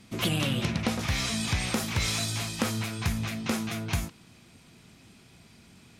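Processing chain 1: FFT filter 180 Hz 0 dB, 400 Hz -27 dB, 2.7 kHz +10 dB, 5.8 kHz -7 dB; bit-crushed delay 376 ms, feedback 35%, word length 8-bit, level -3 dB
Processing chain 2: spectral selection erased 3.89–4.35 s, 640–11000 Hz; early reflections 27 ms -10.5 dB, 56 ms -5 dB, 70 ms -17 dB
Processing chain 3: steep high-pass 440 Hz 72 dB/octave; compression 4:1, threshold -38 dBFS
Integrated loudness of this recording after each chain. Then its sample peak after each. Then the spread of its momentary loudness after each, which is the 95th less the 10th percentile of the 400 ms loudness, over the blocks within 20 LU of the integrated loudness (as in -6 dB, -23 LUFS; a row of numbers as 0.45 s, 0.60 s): -25.5 LUFS, -28.0 LUFS, -39.0 LUFS; -9.0 dBFS, -12.0 dBFS, -19.5 dBFS; 11 LU, 5 LU, 20 LU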